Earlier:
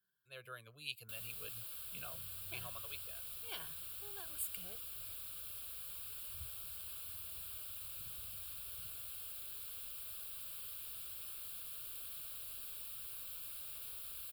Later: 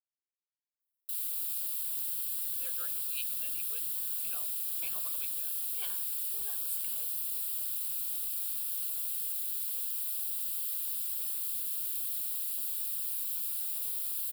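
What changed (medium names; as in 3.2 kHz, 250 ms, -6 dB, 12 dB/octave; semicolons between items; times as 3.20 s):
speech: entry +2.30 s; first sound: add tone controls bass +7 dB, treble +13 dB; master: add peaking EQ 73 Hz -12 dB 3 oct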